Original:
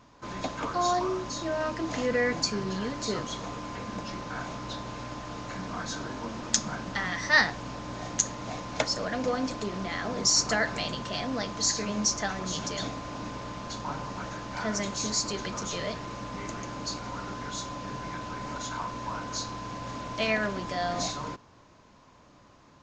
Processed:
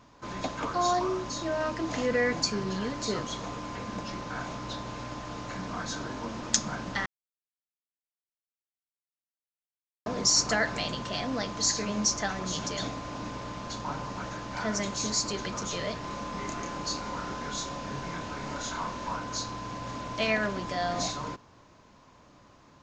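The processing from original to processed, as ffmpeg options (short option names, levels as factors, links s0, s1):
-filter_complex "[0:a]asettb=1/sr,asplit=3[s0][s1][s2];[s0]atrim=end=16.014[s3];[s1]atrim=start=16.01:end=19.16,asetpts=PTS-STARTPTS,afade=t=in:d=0.004:c=qsin,afade=t=out:st=3.146:d=0.004:c=qsin,asplit=2[s4][s5];[s5]adelay=29,volume=0.708[s6];[s4][s6]amix=inputs=2:normalize=0,atrim=end_sample=138915[s7];[s2]atrim=start=19.156[s8];[s3][s7]acrossfade=d=0.004:c1=hsin:c2=qsin[s9];[s9][s8]acrossfade=d=0.004:c1=qsin:c2=hsin,asplit=3[s10][s11][s12];[s10]atrim=end=7.06,asetpts=PTS-STARTPTS,afade=t=out:st=7.056:d=0.004:c=hsin[s13];[s11]atrim=start=7.06:end=10.06,asetpts=PTS-STARTPTS,volume=0[s14];[s12]atrim=start=10.06,asetpts=PTS-STARTPTS,afade=t=in:d=0.004:c=hsin[s15];[s13][s14][s15]concat=n=3:v=0:a=1"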